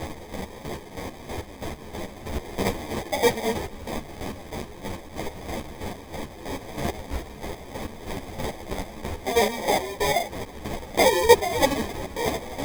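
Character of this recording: a quantiser's noise floor 6-bit, dither triangular; chopped level 3.1 Hz, depth 65%, duty 35%; aliases and images of a low sample rate 1.4 kHz, jitter 0%; a shimmering, thickened sound

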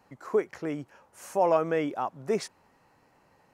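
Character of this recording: noise floor -65 dBFS; spectral tilt -5.0 dB/octave

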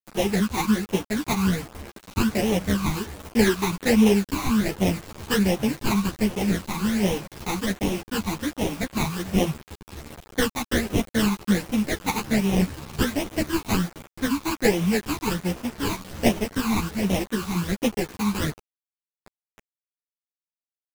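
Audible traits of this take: aliases and images of a low sample rate 1.3 kHz, jitter 20%; phasing stages 12, 1.3 Hz, lowest notch 530–1500 Hz; a quantiser's noise floor 6-bit, dither none; a shimmering, thickened sound

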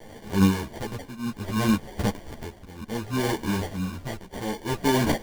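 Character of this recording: a quantiser's noise floor 8-bit, dither triangular; tremolo triangle 0.64 Hz, depth 85%; aliases and images of a low sample rate 1.3 kHz, jitter 0%; a shimmering, thickened sound

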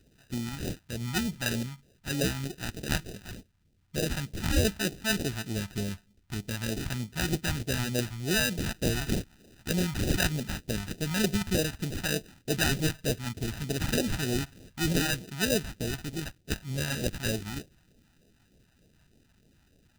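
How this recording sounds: aliases and images of a low sample rate 1.1 kHz, jitter 0%; phasing stages 2, 3.3 Hz, lowest notch 430–1100 Hz

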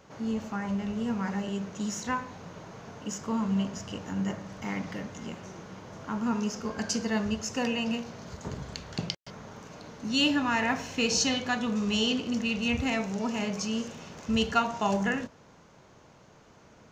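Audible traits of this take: noise floor -56 dBFS; spectral tilt -4.0 dB/octave

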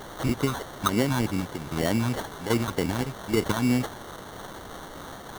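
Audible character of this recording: chopped level 1.2 Hz, depth 65%, duty 75%; a quantiser's noise floor 6-bit, dither triangular; phasing stages 4, 3.3 Hz, lowest notch 440–2900 Hz; aliases and images of a low sample rate 2.5 kHz, jitter 0%

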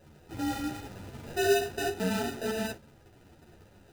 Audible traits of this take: aliases and images of a low sample rate 1.1 kHz, jitter 0%; a shimmering, thickened sound

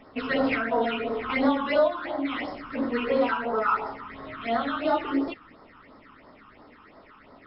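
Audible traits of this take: phasing stages 8, 2.9 Hz, lowest notch 570–2600 Hz; MP3

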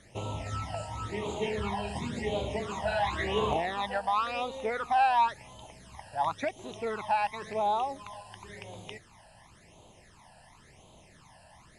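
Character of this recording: phasing stages 12, 0.94 Hz, lowest notch 360–1800 Hz

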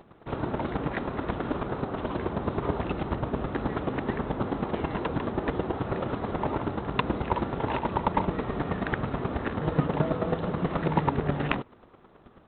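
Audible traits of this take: chopped level 9.3 Hz, depth 60%, duty 15%; G.726

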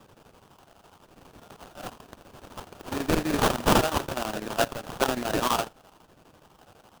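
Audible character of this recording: a quantiser's noise floor 10-bit, dither none; phasing stages 12, 1 Hz, lowest notch 320–1200 Hz; aliases and images of a low sample rate 2.1 kHz, jitter 20%; chopped level 12 Hz, depth 65%, duty 75%

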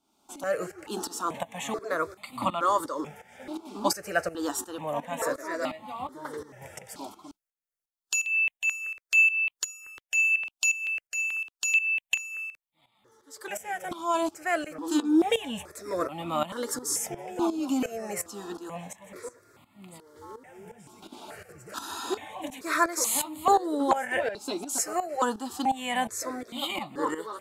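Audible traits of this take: tremolo saw up 2.8 Hz, depth 80%; notches that jump at a steady rate 2.3 Hz 490–1600 Hz

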